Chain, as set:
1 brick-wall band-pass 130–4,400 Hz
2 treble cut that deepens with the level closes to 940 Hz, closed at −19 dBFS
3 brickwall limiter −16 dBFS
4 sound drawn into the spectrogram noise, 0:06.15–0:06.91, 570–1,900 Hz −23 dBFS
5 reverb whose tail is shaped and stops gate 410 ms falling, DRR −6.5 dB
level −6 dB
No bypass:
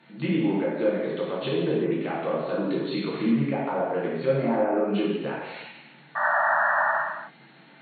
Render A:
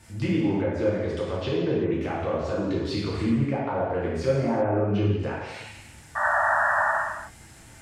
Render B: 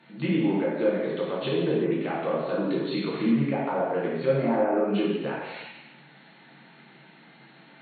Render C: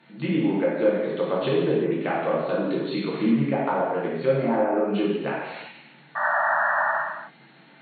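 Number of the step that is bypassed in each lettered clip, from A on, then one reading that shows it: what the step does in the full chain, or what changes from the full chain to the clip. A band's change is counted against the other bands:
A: 1, 125 Hz band +6.0 dB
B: 4, 2 kHz band −10.0 dB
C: 3, change in momentary loudness spread −3 LU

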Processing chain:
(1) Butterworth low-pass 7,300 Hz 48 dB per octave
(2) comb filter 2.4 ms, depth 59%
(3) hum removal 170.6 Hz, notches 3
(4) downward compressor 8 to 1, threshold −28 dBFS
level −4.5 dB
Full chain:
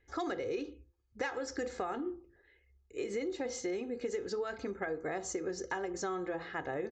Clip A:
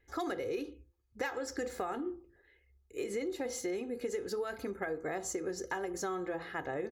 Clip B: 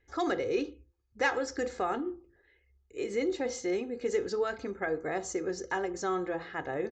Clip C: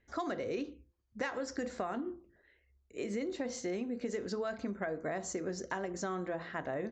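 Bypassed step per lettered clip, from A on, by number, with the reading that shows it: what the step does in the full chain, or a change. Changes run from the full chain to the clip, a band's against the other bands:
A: 1, 8 kHz band +1.5 dB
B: 4, average gain reduction 3.5 dB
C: 2, 125 Hz band +5.5 dB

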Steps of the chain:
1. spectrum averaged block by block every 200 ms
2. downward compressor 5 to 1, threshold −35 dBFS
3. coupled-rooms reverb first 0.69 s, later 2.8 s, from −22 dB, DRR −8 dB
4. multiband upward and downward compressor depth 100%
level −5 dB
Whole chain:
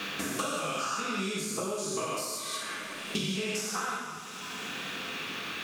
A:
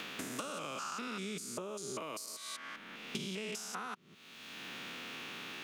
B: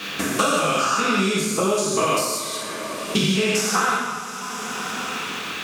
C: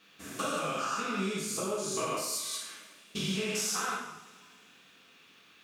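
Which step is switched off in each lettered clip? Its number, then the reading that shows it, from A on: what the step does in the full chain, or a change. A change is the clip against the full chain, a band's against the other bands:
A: 3, change in crest factor +3.5 dB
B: 2, average gain reduction 10.5 dB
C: 4, change in momentary loudness spread +7 LU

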